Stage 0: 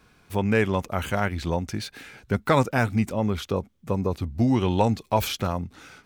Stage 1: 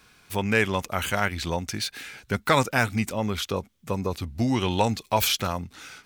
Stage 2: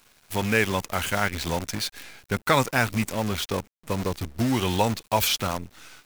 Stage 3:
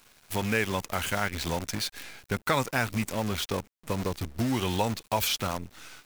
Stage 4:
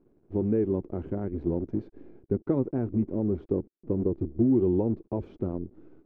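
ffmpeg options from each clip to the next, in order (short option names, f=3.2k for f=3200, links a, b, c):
-af "tiltshelf=f=1.3k:g=-5.5,volume=2dB"
-af "acrusher=bits=6:dc=4:mix=0:aa=0.000001"
-af "acompressor=threshold=-31dB:ratio=1.5"
-af "lowpass=f=350:t=q:w=4.1"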